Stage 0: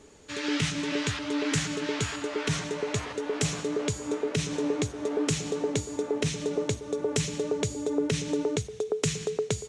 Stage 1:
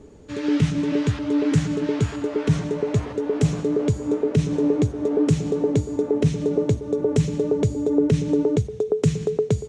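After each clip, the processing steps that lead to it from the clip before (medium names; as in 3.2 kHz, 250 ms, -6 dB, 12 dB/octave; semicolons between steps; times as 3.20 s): tilt shelf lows +9 dB, about 790 Hz; trim +2.5 dB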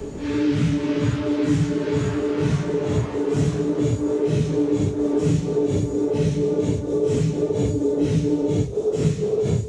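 phase randomisation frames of 200 ms; three bands compressed up and down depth 70%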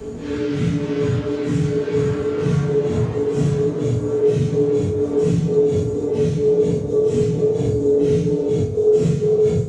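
reverberation RT60 0.55 s, pre-delay 3 ms, DRR 0 dB; trim -3 dB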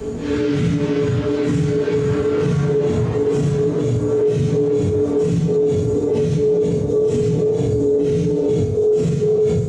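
peak limiter -15 dBFS, peak gain reduction 8 dB; trim +4.5 dB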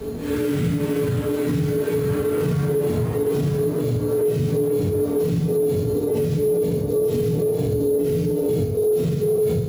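careless resampling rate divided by 4×, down none, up hold; trim -3.5 dB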